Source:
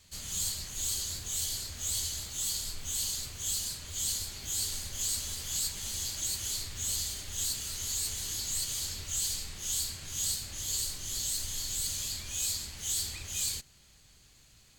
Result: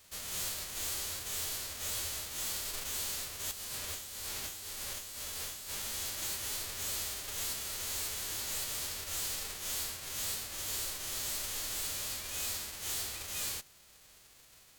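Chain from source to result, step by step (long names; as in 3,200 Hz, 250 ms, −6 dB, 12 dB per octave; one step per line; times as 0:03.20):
spectral envelope flattened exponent 0.3
0:03.51–0:05.82: compressor whose output falls as the input rises −41 dBFS, ratio −1
soft clipping −32.5 dBFS, distortion −12 dB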